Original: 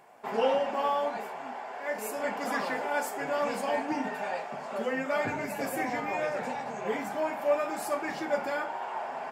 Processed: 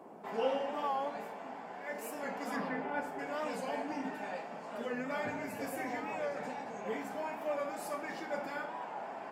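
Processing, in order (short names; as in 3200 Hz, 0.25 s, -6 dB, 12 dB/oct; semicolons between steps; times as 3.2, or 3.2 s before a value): 2.56–3.19 tone controls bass +11 dB, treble -15 dB; band noise 160–920 Hz -46 dBFS; reverb RT60 0.80 s, pre-delay 4 ms, DRR 6.5 dB; record warp 45 rpm, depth 100 cents; gain -8 dB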